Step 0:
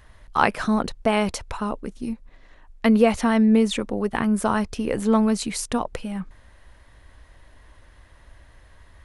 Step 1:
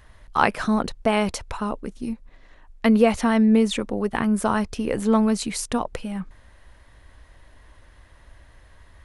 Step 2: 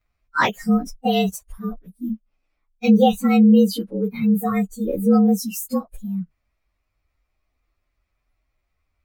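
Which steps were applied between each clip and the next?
no processing that can be heard
partials spread apart or drawn together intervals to 111%; noise reduction from a noise print of the clip's start 24 dB; level +4.5 dB

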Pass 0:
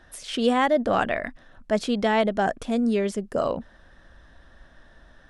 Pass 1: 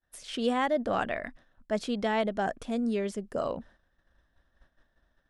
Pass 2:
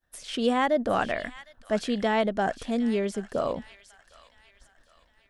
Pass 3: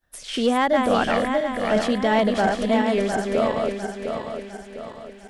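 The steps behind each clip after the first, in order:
downward expander −41 dBFS; level −6.5 dB
delay with a high-pass on its return 758 ms, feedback 43%, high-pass 1,900 Hz, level −11.5 dB; level +3.5 dB
feedback delay that plays each chunk backwards 352 ms, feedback 65%, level −3.5 dB; in parallel at −4 dB: hard clipping −19 dBFS, distortion −15 dB

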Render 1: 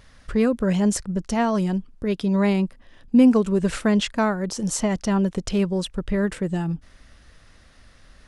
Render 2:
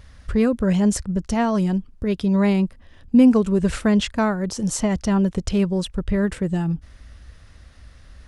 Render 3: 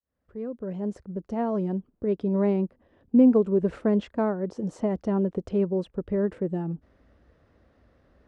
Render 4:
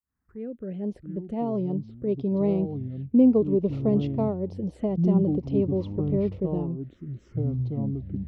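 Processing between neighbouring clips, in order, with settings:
parametric band 66 Hz +12 dB 1.6 octaves
fade in at the beginning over 1.81 s; resonant band-pass 420 Hz, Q 1.2
delay with pitch and tempo change per echo 533 ms, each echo −6 semitones, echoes 3, each echo −6 dB; phaser swept by the level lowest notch 560 Hz, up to 1,600 Hz, full sweep at −25 dBFS

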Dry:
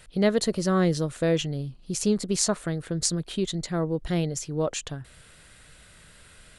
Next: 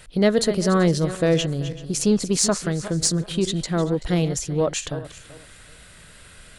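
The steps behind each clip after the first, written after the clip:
feedback delay that plays each chunk backwards 192 ms, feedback 45%, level −12.5 dB
in parallel at −6 dB: soft clipping −18.5 dBFS, distortion −14 dB
on the sum: level +1.5 dB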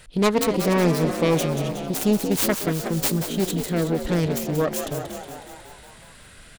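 phase distortion by the signal itself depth 0.75 ms
on a send: echo with shifted repeats 183 ms, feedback 64%, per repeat +65 Hz, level −9 dB
on the sum: level −1 dB

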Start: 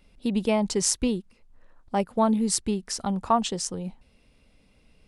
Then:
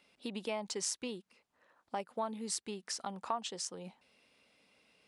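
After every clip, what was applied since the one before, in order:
meter weighting curve A
downward compressor 2 to 1, threshold −39 dBFS, peak gain reduction 12.5 dB
level −2 dB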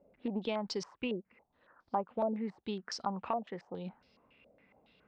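spectral tilt −3 dB per octave
low-pass on a step sequencer 7.2 Hz 590–5,000 Hz
level −1 dB

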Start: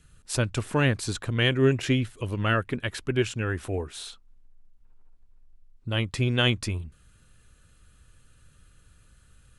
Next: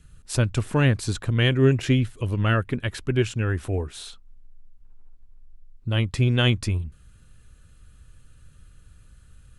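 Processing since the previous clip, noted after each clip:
low-shelf EQ 200 Hz +7.5 dB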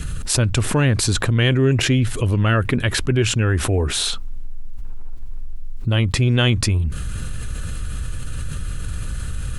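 envelope flattener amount 70%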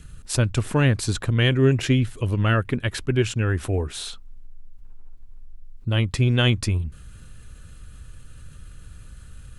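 expander for the loud parts 2.5 to 1, over −26 dBFS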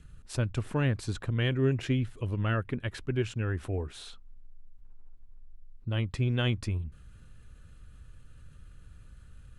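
high-shelf EQ 4,500 Hz −9 dB
level −8.5 dB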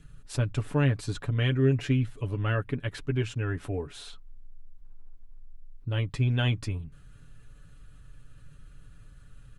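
comb filter 7 ms, depth 60%

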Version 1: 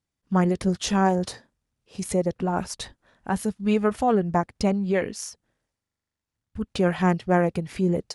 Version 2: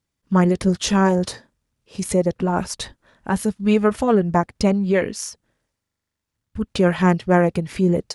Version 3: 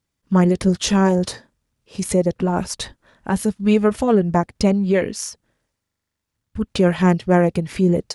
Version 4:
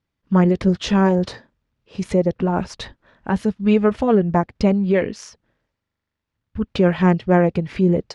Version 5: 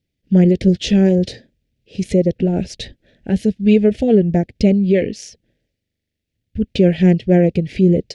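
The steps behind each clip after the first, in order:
notch filter 750 Hz, Q 12; level +5 dB
dynamic equaliser 1,300 Hz, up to −4 dB, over −29 dBFS, Q 0.9; level +1.5 dB
low-pass filter 3,600 Hz 12 dB per octave
Butterworth band-reject 1,100 Hz, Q 0.69; level +4 dB

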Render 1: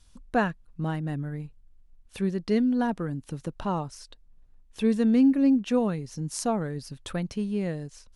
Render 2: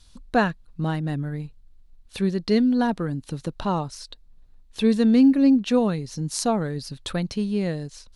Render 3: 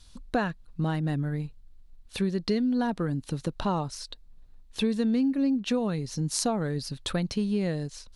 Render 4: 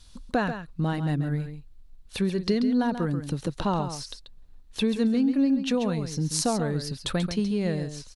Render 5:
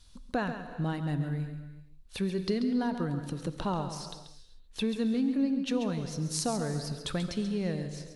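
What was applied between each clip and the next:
parametric band 4,100 Hz +8 dB 0.5 octaves; level +4 dB
downward compressor 6 to 1, threshold −23 dBFS, peak gain reduction 10.5 dB
single-tap delay 136 ms −9.5 dB; level +1.5 dB
convolution reverb, pre-delay 3 ms, DRR 10.5 dB; level −5.5 dB

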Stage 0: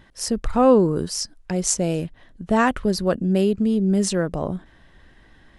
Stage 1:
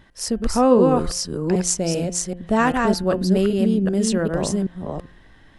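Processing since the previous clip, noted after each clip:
delay that plays each chunk backwards 389 ms, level −3 dB
hum removal 175.7 Hz, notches 18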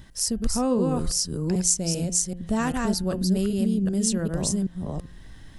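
bass and treble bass +10 dB, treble +14 dB
downward compressor 1.5 to 1, threshold −33 dBFS, peak gain reduction 10 dB
level −2.5 dB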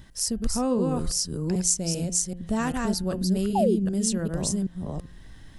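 sound drawn into the spectrogram fall, 0:03.55–0:03.76, 320–890 Hz −21 dBFS
level −1.5 dB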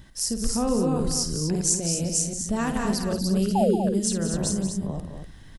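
loudspeakers that aren't time-aligned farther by 18 metres −9 dB, 62 metres −11 dB, 84 metres −8 dB

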